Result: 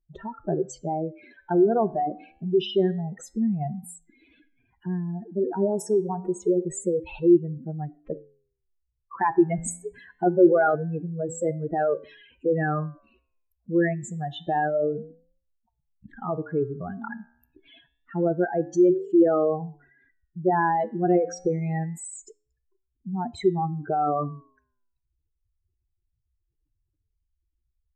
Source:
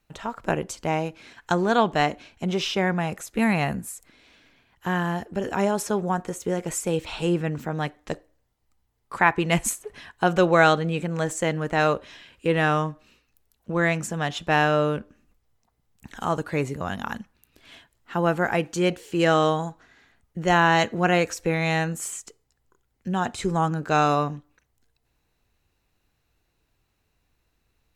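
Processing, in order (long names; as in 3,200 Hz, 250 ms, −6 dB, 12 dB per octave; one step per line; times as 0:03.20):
expanding power law on the bin magnitudes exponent 3.5
parametric band 360 Hz +13.5 dB 0.56 octaves
flanger 0.26 Hz, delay 8.4 ms, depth 6.5 ms, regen −87%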